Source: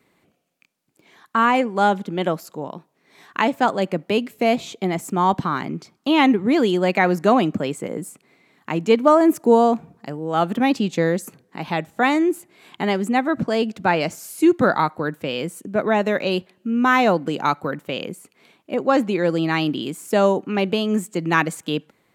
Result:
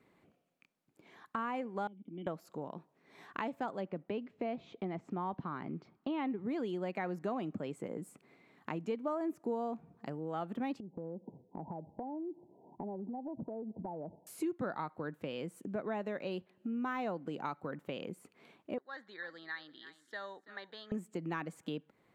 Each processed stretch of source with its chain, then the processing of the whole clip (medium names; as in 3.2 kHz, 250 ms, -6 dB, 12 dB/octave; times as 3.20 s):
1.87–2.27 s: cascade formant filter i + compression 3:1, threshold -33 dBFS
3.81–6.38 s: block-companded coder 7-bit + distance through air 200 m
10.80–14.27 s: brick-wall FIR low-pass 1 kHz + compression 4:1, threshold -32 dBFS
18.78–20.92 s: two resonant band-passes 2.6 kHz, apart 1.1 oct + delay 333 ms -17 dB
whole clip: de-esser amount 55%; treble shelf 2.9 kHz -10.5 dB; compression 3:1, threshold -35 dBFS; trim -4.5 dB